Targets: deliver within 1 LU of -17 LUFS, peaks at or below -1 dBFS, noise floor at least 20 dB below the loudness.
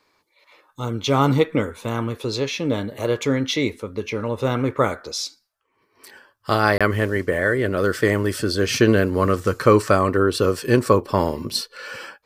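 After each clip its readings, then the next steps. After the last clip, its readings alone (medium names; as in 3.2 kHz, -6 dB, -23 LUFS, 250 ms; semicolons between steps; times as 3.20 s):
dropouts 1; longest dropout 26 ms; loudness -21.0 LUFS; peak level -2.0 dBFS; loudness target -17.0 LUFS
-> interpolate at 6.78 s, 26 ms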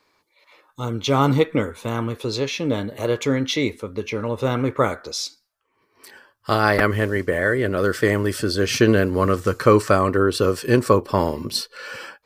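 dropouts 0; loudness -21.0 LUFS; peak level -2.0 dBFS; loudness target -17.0 LUFS
-> trim +4 dB; peak limiter -1 dBFS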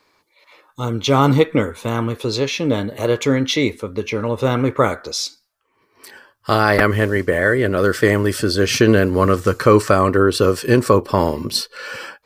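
loudness -17.5 LUFS; peak level -1.0 dBFS; noise floor -65 dBFS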